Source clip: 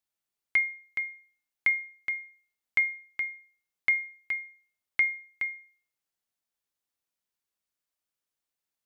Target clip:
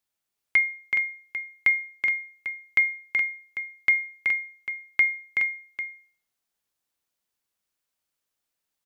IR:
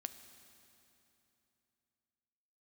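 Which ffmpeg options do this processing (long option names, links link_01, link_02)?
-af "aecho=1:1:376:0.562,volume=4dB"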